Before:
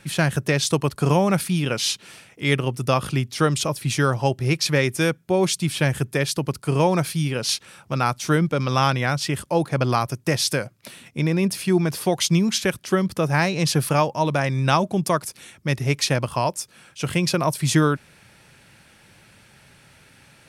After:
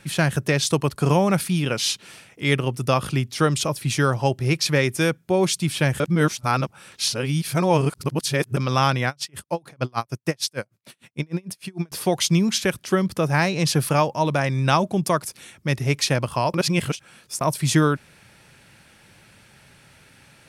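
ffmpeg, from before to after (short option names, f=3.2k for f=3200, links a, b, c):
-filter_complex "[0:a]asettb=1/sr,asplit=3[a][b][c];[a]atrim=end=9.084[d];[b]atrim=start=9.08:end=11.92,asetpts=PTS-STARTPTS,afade=t=in:d=0.004:c=qsin,afade=t=out:st=2.836:d=0.004:c=qsin,aeval=exprs='val(0)*pow(10,-37*(0.5-0.5*cos(2*PI*6.6*n/s))/20)':c=same[e];[c]atrim=start=11.916[f];[d][e]acrossfade=d=0.004:c1=hsin:c2=qsin[g];[g][f]acrossfade=d=0.004:c1=qsin:c2=hsin,asplit=5[h][i][j][k][l];[h]atrim=end=6.002[m];[i]atrim=start=5.998:end=8.572,asetpts=PTS-STARTPTS,areverse[n];[j]atrim=start=8.568:end=16.542[o];[k]atrim=start=16.538:end=17.412,asetpts=PTS-STARTPTS,areverse[p];[l]atrim=start=17.408[q];[m][n]acrossfade=d=0.004:c1=hsin:c2=hsin[r];[r][o]acrossfade=d=0.004:c1=hsin:c2=hsin[s];[s][p]acrossfade=d=0.004:c1=hsin:c2=hsin[t];[t][q]acrossfade=d=0.004:c1=hsin:c2=hsin"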